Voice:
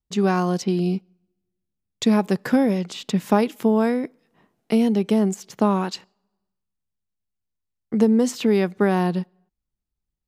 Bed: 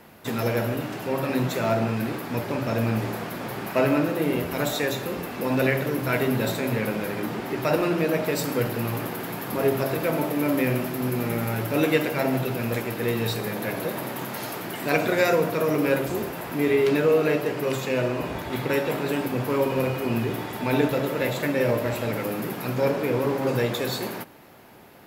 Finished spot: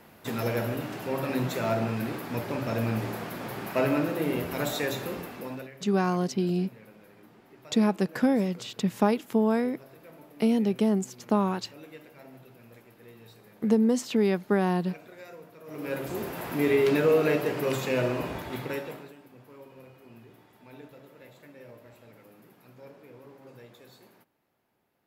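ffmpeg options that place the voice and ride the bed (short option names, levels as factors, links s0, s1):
-filter_complex "[0:a]adelay=5700,volume=0.562[s0];[1:a]volume=9.44,afade=t=out:st=5.09:d=0.6:silence=0.0841395,afade=t=in:st=15.64:d=0.81:silence=0.0668344,afade=t=out:st=18.12:d=1.02:silence=0.0630957[s1];[s0][s1]amix=inputs=2:normalize=0"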